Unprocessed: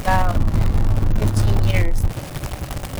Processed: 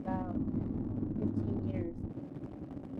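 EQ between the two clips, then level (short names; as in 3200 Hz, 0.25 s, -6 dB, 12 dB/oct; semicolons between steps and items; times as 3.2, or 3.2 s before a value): band-pass 270 Hz, Q 3.1; -3.0 dB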